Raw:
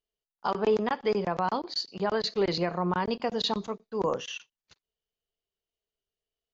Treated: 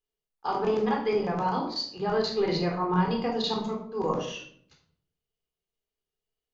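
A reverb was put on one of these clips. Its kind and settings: shoebox room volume 920 m³, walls furnished, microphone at 3.9 m; gain -5 dB

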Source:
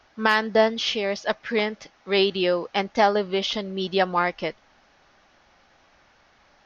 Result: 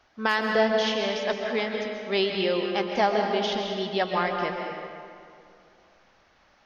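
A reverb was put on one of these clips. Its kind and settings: digital reverb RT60 2.4 s, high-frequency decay 0.65×, pre-delay 95 ms, DRR 2 dB; gain -4.5 dB

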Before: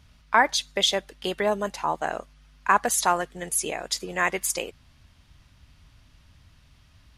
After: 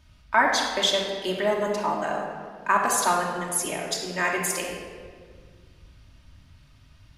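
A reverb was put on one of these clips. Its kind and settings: shoebox room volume 2600 m³, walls mixed, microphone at 2.7 m; gain -3.5 dB

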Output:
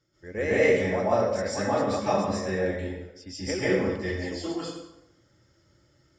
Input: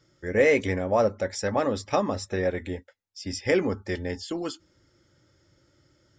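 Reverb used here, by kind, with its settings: plate-style reverb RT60 0.88 s, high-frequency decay 0.75×, pre-delay 0.12 s, DRR -10 dB; gain -10 dB

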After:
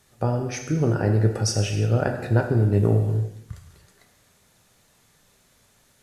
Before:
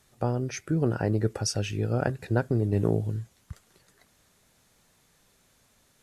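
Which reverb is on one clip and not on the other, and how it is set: non-linear reverb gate 0.38 s falling, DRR 3 dB; gain +2.5 dB

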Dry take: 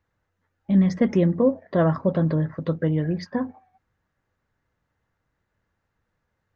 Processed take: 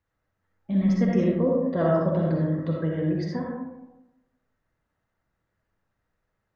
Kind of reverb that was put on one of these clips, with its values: digital reverb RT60 1 s, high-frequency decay 0.4×, pre-delay 20 ms, DRR -2.5 dB; gain -6.5 dB

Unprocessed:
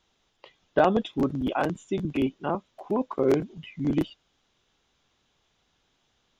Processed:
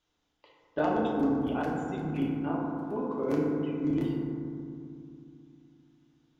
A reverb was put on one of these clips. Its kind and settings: FDN reverb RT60 2.5 s, low-frequency decay 1.45×, high-frequency decay 0.3×, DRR -4 dB; gain -11 dB

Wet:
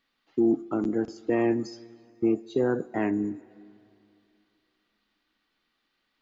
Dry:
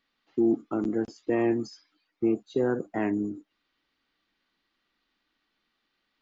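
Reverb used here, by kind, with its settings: plate-style reverb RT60 2.8 s, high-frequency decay 0.85×, DRR 20 dB; gain +1 dB

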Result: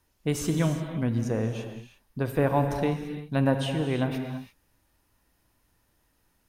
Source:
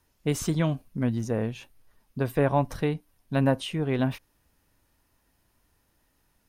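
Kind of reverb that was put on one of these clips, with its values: non-linear reverb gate 0.37 s flat, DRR 5.5 dB; gain -1 dB

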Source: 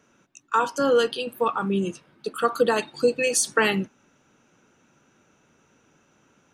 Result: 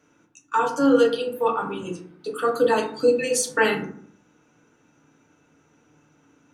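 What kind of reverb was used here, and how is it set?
FDN reverb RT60 0.57 s, low-frequency decay 1.3×, high-frequency decay 0.4×, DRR -1.5 dB; gain -4 dB

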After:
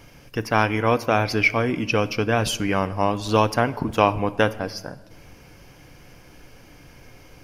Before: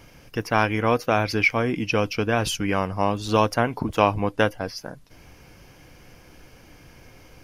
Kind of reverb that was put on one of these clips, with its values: shoebox room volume 1400 m³, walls mixed, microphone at 0.31 m; gain +1 dB

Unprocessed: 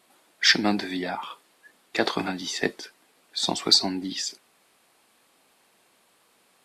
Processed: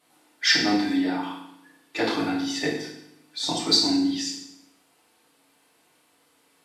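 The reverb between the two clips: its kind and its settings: FDN reverb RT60 0.77 s, low-frequency decay 1.35×, high-frequency decay 0.95×, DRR -5.5 dB; gain -7 dB

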